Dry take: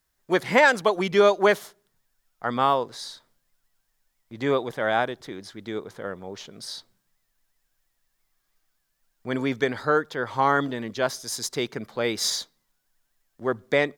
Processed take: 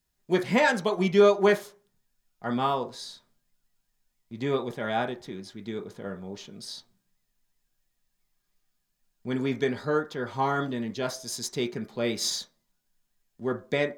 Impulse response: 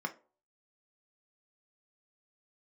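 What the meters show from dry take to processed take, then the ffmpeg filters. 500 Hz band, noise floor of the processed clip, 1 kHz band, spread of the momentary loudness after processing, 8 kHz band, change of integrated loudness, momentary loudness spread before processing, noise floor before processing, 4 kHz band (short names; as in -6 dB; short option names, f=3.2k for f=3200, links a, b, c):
-2.5 dB, -78 dBFS, -5.5 dB, 18 LU, -3.0 dB, -3.0 dB, 19 LU, -75 dBFS, -3.5 dB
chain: -filter_complex "[0:a]asplit=2[a][b];[1:a]atrim=start_sample=2205,asetrate=48510,aresample=44100[c];[b][c]afir=irnorm=-1:irlink=0,volume=-5dB[d];[a][d]amix=inputs=2:normalize=0,volume=-1.5dB"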